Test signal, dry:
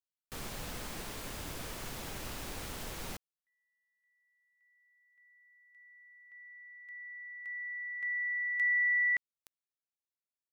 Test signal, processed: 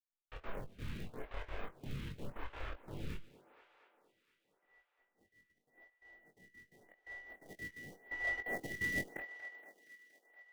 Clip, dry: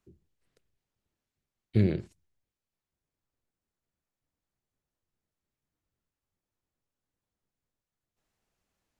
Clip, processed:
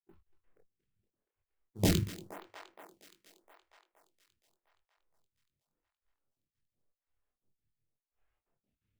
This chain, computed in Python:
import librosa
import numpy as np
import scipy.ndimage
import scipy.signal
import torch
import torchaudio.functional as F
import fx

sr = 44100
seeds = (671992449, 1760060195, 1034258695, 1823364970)

p1 = fx.dead_time(x, sr, dead_ms=0.09)
p2 = scipy.signal.sosfilt(scipy.signal.butter(4, 3300.0, 'lowpass', fs=sr, output='sos'), p1)
p3 = fx.high_shelf(p2, sr, hz=2600.0, db=-3.5)
p4 = fx.step_gate(p3, sr, bpm=172, pattern='.x.x.xx..xxx', floor_db=-24.0, edge_ms=4.5)
p5 = fx.chorus_voices(p4, sr, voices=4, hz=0.27, base_ms=29, depth_ms=1.3, mix_pct=50)
p6 = fx.sample_hold(p5, sr, seeds[0], rate_hz=1200.0, jitter_pct=20)
p7 = p5 + (p6 * librosa.db_to_amplitude(-6.5))
p8 = (np.mod(10.0 ** (21.5 / 20.0) * p7 + 1.0, 2.0) - 1.0) / 10.0 ** (21.5 / 20.0)
p9 = fx.doubler(p8, sr, ms=21.0, db=-7.5)
p10 = p9 + fx.echo_thinned(p9, sr, ms=235, feedback_pct=74, hz=230.0, wet_db=-16, dry=0)
p11 = fx.stagger_phaser(p10, sr, hz=0.88)
y = p11 * librosa.db_to_amplitude(4.0)